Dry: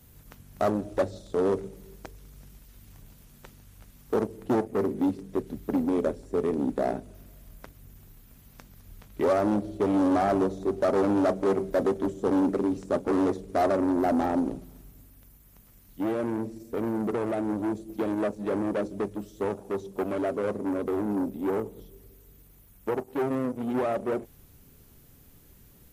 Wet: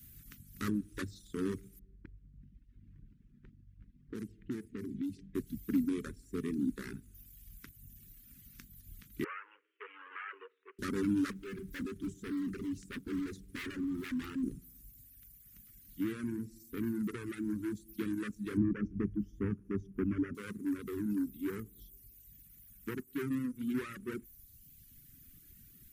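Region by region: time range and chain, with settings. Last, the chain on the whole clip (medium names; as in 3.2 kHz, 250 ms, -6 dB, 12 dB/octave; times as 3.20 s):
1.79–5.35 s: level-controlled noise filter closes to 840 Hz, open at -20.5 dBFS + peaking EQ 1.2 kHz -7 dB 0.67 oct + compression, threshold -28 dBFS
9.24–10.79 s: Chebyshev band-pass 460–2900 Hz, order 5 + peaking EQ 570 Hz -9 dB 0.26 oct
11.31–14.43 s: hard clipper -27.5 dBFS + loudspeaker Doppler distortion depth 0.2 ms
18.57–20.35 s: boxcar filter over 11 samples + bass shelf 240 Hz +11.5 dB
whole clip: Chebyshev band-stop 270–1700 Hz, order 2; reverb removal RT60 1.3 s; treble shelf 11 kHz +11 dB; trim -2 dB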